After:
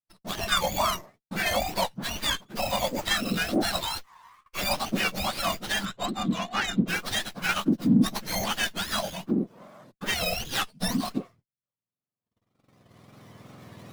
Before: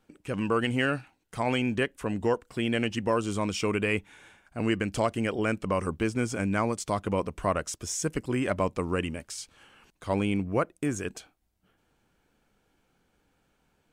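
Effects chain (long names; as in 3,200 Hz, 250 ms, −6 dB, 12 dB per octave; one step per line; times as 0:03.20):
frequency axis turned over on the octave scale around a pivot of 1,300 Hz
camcorder AGC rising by 6.8 dB per second
noise gate −56 dBFS, range −41 dB
0:03.81–0:04.58: Chebyshev high-pass filter 970 Hz, order 5
0:10.39–0:10.92: comb filter 3.9 ms, depth 46%
tape wow and flutter 130 cents
0:05.85–0:06.88: linear-phase brick-wall low-pass 4,100 Hz
windowed peak hold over 5 samples
level +5.5 dB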